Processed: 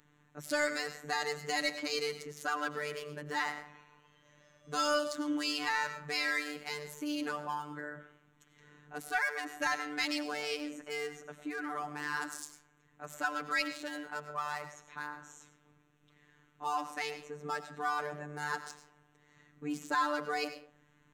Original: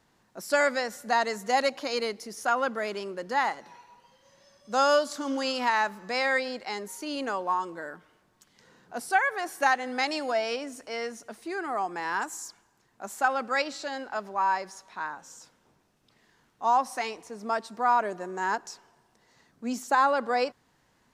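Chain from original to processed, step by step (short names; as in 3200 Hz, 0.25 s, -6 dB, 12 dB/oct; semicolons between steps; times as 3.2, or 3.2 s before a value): Wiener smoothing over 9 samples; notches 50/100/150/200 Hz; on a send at -12 dB: reverb RT60 0.40 s, pre-delay 60 ms; on the sum: robotiser 148 Hz; high shelf 4900 Hz +6 dB; in parallel at -1 dB: compressor, threshold -42 dBFS, peak gain reduction 22 dB; on the sum: bell 710 Hz -10.5 dB 1.4 oct; soft clip -17.5 dBFS, distortion -19 dB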